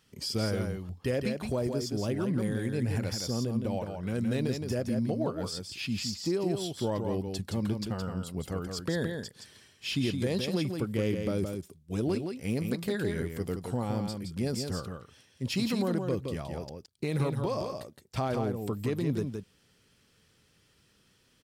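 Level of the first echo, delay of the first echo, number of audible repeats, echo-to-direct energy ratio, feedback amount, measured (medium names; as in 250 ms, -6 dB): -5.5 dB, 168 ms, 1, -5.5 dB, no regular repeats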